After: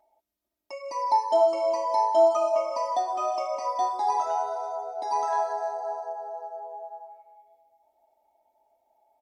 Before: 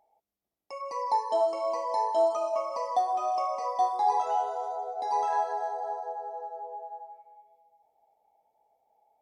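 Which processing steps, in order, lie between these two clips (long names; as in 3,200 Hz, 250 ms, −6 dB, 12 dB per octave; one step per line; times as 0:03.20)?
comb filter 3.2 ms, depth 98%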